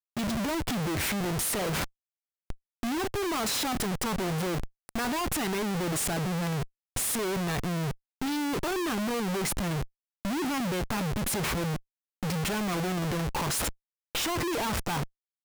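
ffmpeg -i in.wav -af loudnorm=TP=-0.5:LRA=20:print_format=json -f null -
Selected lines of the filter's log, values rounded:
"input_i" : "-30.2",
"input_tp" : "-21.2",
"input_lra" : "1.0",
"input_thresh" : "-40.4",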